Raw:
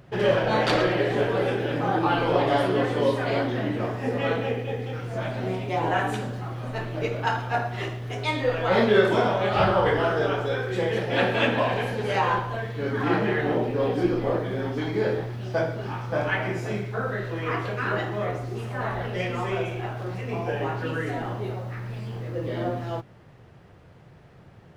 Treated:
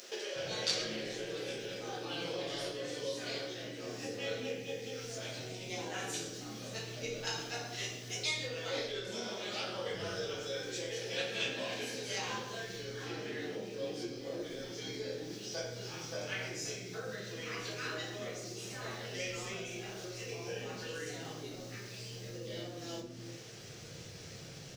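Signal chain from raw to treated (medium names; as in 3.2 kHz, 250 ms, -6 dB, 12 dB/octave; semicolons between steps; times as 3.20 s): FFT filter 400 Hz 0 dB, 970 Hz -16 dB, 3.5 kHz -3 dB, 6.1 kHz +6 dB, 10 kHz -9 dB; compression 6:1, threshold -45 dBFS, peak gain reduction 27.5 dB; tilt EQ +4 dB/octave; bands offset in time highs, lows 360 ms, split 330 Hz; simulated room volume 65 m³, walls mixed, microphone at 0.69 m; trim +8 dB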